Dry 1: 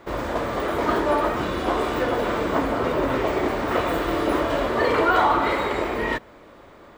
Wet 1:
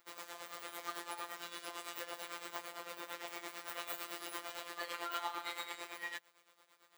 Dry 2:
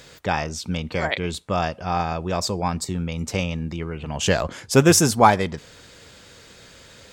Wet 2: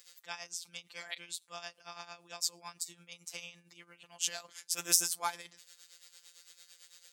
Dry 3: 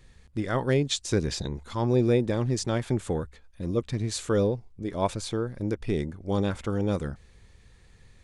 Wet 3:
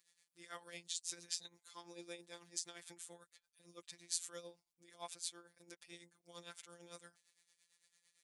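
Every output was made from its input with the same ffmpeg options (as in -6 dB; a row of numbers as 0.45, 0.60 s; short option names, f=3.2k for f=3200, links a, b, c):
-af "afftfilt=real='hypot(re,im)*cos(PI*b)':imag='0':win_size=1024:overlap=0.75,tremolo=f=8.9:d=0.7,aderivative,volume=1dB"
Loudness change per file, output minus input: -21.0, -13.5, -19.0 LU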